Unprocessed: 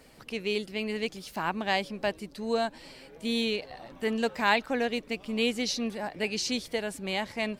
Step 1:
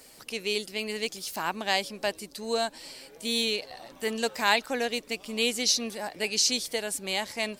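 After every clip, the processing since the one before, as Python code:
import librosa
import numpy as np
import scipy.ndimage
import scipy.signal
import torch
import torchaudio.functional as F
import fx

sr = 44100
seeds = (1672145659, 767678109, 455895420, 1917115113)

y = fx.bass_treble(x, sr, bass_db=-7, treble_db=12)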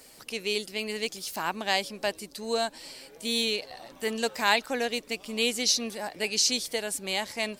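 y = x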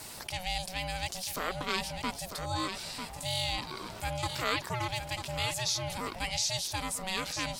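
y = x * np.sin(2.0 * np.pi * 370.0 * np.arange(len(x)) / sr)
y = y + 10.0 ** (-13.5 / 20.0) * np.pad(y, (int(946 * sr / 1000.0), 0))[:len(y)]
y = fx.env_flatten(y, sr, amount_pct=50)
y = F.gain(torch.from_numpy(y), -5.5).numpy()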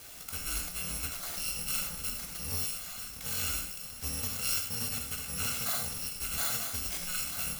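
y = fx.bit_reversed(x, sr, seeds[0], block=128)
y = np.sign(y) * np.maximum(np.abs(y) - 10.0 ** (-53.0 / 20.0), 0.0)
y = fx.rev_gated(y, sr, seeds[1], gate_ms=130, shape='flat', drr_db=1.5)
y = F.gain(torch.from_numpy(y), -2.0).numpy()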